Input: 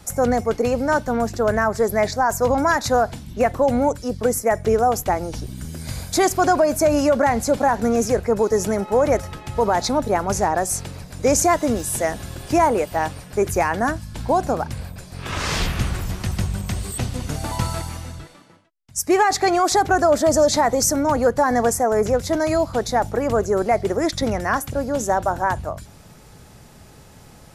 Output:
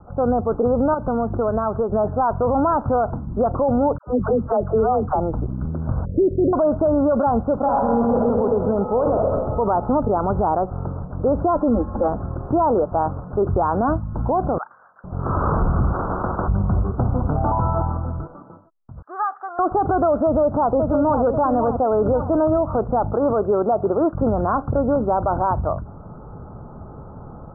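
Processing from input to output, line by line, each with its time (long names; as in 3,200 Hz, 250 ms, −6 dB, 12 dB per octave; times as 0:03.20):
0:00.94–0:01.92: downward compressor 4 to 1, threshold −26 dBFS
0:03.98–0:05.20: all-pass dispersion lows, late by 95 ms, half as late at 650 Hz
0:06.05–0:06.53: Butterworth low-pass 580 Hz 96 dB per octave
0:07.57–0:08.17: thrown reverb, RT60 2.2 s, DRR −5 dB
0:08.86–0:09.29: thrown reverb, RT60 1.4 s, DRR 3 dB
0:11.55–0:12.08: comb filter 3.7 ms, depth 100%
0:14.58–0:15.04: high-pass with resonance 2,000 Hz, resonance Q 2.6
0:15.92–0:16.48: every bin compressed towards the loudest bin 4 to 1
0:17.00–0:17.92: parametric band 790 Hz +4.5 dB
0:19.02–0:19.59: flat-topped band-pass 2,100 Hz, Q 1.2
0:20.25–0:21.22: delay throw 540 ms, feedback 40%, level −8 dB
0:23.14–0:24.15: high-pass filter 190 Hz 6 dB per octave
whole clip: Butterworth low-pass 1,400 Hz 96 dB per octave; automatic gain control gain up to 8 dB; brickwall limiter −12 dBFS; level +1 dB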